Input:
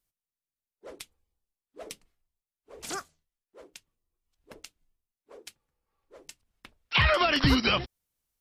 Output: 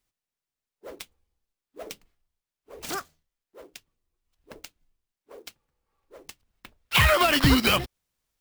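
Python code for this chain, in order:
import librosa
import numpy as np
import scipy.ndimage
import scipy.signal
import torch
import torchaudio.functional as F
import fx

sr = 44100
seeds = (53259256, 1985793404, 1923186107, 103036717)

y = fx.clock_jitter(x, sr, seeds[0], jitter_ms=0.021)
y = y * librosa.db_to_amplitude(3.5)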